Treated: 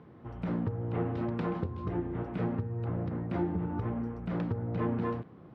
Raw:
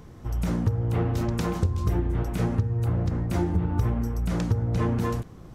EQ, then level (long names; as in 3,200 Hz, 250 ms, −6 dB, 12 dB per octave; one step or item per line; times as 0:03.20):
band-pass filter 160–7,900 Hz
high-frequency loss of the air 430 metres
−2.5 dB